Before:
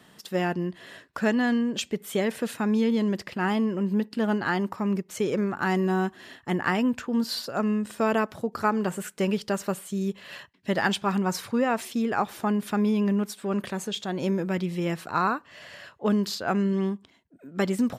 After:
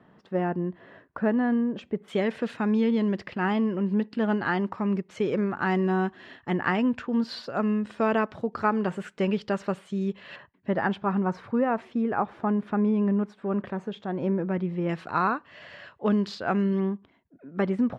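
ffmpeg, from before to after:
-af "asetnsamples=n=441:p=0,asendcmd='2.08 lowpass f 3200;10.36 lowpass f 1500;14.89 lowpass f 3300;16.8 lowpass f 1900',lowpass=1.3k"

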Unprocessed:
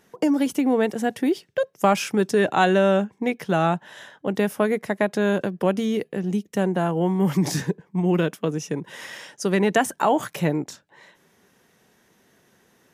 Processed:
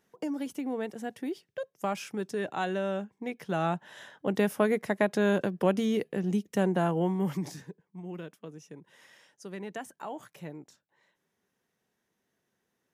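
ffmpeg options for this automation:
-af "volume=-4dB,afade=t=in:st=3.19:d=1.11:silence=0.354813,afade=t=out:st=6.88:d=0.5:silence=0.421697,afade=t=out:st=7.38:d=0.18:silence=0.398107"

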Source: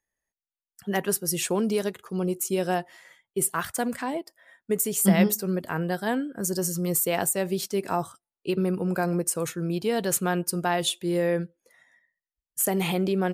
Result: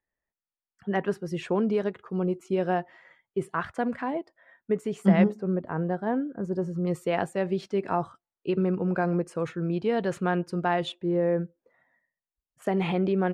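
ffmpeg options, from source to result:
-af "asetnsamples=n=441:p=0,asendcmd='5.24 lowpass f 1100;6.87 lowpass f 2300;10.92 lowpass f 1200;12.62 lowpass f 2300',lowpass=2k"

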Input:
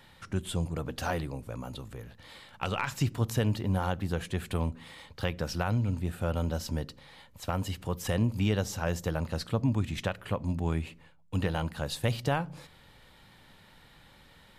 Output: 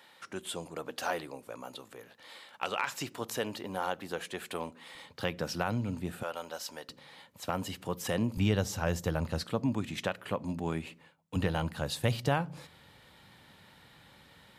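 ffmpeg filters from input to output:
-af "asetnsamples=n=441:p=0,asendcmd='4.95 highpass f 160;6.23 highpass f 660;6.89 highpass f 170;8.37 highpass f 63;9.43 highpass f 180;11.36 highpass f 78',highpass=370"

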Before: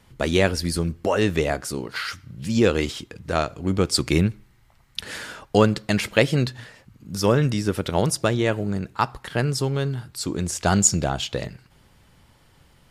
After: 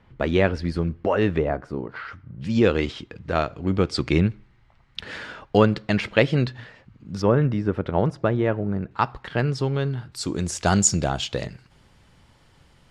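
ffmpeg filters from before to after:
-af "asetnsamples=n=441:p=0,asendcmd='1.38 lowpass f 1300;2.41 lowpass f 3500;7.22 lowpass f 1600;8.91 lowpass f 3600;10.12 lowpass f 8300',lowpass=2.4k"

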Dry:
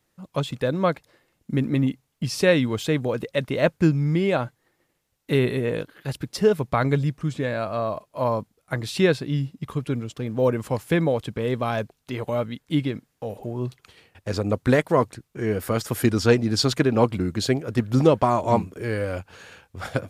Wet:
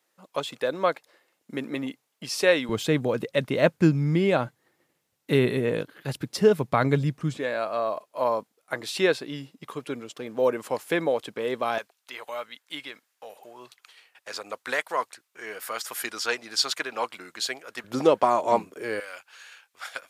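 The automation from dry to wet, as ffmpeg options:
-af "asetnsamples=n=441:p=0,asendcmd='2.69 highpass f 130;7.37 highpass f 380;11.78 highpass f 1000;17.84 highpass f 380;19 highpass f 1400',highpass=430"

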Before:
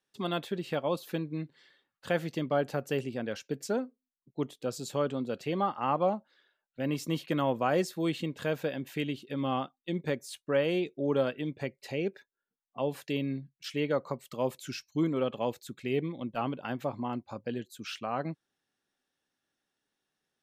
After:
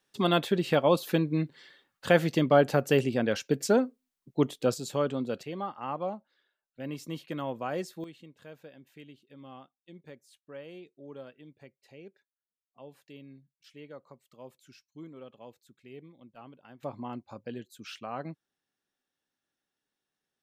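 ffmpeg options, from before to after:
-af "asetnsamples=n=441:p=0,asendcmd='4.74 volume volume 1.5dB;5.43 volume volume -6dB;8.04 volume volume -17dB;16.83 volume volume -4dB',volume=7.5dB"

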